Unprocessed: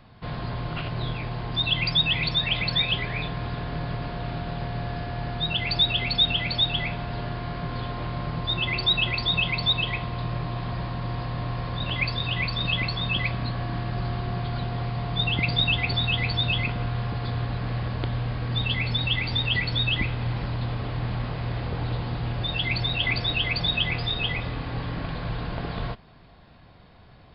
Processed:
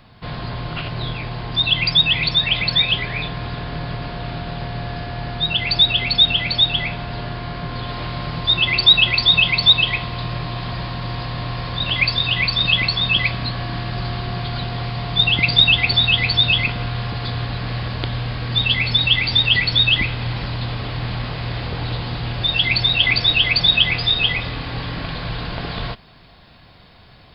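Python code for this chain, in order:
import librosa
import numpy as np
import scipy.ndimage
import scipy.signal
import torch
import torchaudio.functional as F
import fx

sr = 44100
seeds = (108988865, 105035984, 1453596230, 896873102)

y = fx.high_shelf(x, sr, hz=2400.0, db=fx.steps((0.0, 6.5), (7.87, 12.0)))
y = y * 10.0 ** (3.0 / 20.0)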